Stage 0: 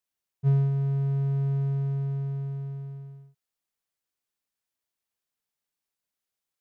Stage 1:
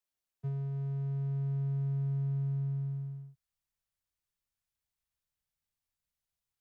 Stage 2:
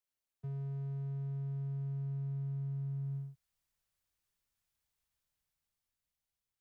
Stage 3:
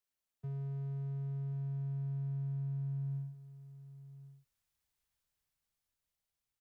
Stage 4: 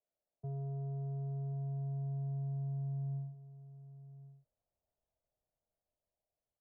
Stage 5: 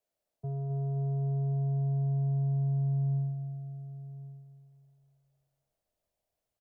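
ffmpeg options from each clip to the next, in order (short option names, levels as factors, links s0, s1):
-filter_complex "[0:a]acrossover=split=120|240|560[s0][s1][s2][s3];[s0]acompressor=threshold=0.01:ratio=4[s4];[s1]acompressor=threshold=0.0126:ratio=4[s5];[s2]acompressor=threshold=0.00447:ratio=4[s6];[s3]acompressor=threshold=0.00158:ratio=4[s7];[s4][s5][s6][s7]amix=inputs=4:normalize=0,asubboost=boost=8.5:cutoff=110,volume=0.631"
-af "dynaudnorm=f=420:g=7:m=2.11,alimiter=level_in=2.66:limit=0.0631:level=0:latency=1,volume=0.376,volume=0.75"
-af "aecho=1:1:1093:0.178"
-af "lowpass=f=630:t=q:w=4.9,volume=0.891"
-af "aecho=1:1:261|522|783|1044|1305:0.282|0.144|0.0733|0.0374|0.0191,volume=1.88"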